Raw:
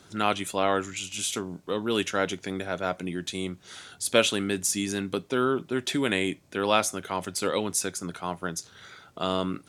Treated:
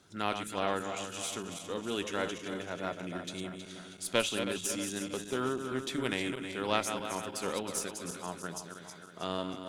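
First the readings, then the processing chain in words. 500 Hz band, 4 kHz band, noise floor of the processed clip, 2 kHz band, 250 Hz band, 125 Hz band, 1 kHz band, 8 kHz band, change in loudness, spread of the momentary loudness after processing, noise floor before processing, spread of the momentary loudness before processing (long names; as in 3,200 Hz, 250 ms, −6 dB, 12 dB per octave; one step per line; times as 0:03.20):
−7.0 dB, −6.5 dB, −50 dBFS, −6.5 dB, −7.0 dB, −7.0 dB, −7.0 dB, −7.5 dB, −7.0 dB, 9 LU, −56 dBFS, 10 LU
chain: feedback delay that plays each chunk backwards 159 ms, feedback 71%, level −7 dB
harmonic generator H 3 −17 dB, 4 −23 dB, 5 −31 dB, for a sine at −4.5 dBFS
level −6 dB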